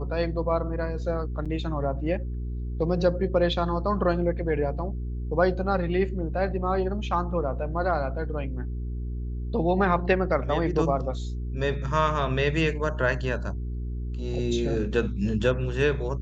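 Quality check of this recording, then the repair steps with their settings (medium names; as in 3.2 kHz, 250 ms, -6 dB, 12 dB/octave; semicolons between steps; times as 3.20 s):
hum 60 Hz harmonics 7 -31 dBFS
1.45–1.46 s: dropout 6.6 ms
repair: de-hum 60 Hz, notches 7; interpolate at 1.45 s, 6.6 ms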